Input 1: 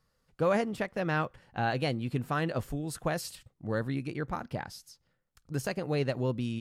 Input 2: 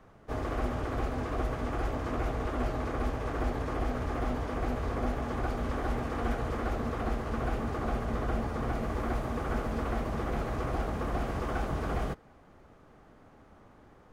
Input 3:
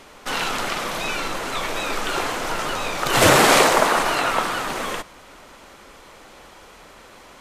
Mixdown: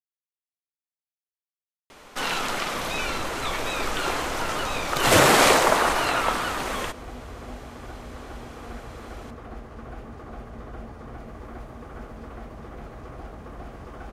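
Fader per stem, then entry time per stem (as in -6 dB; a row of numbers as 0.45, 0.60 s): off, -7.5 dB, -2.5 dB; off, 2.45 s, 1.90 s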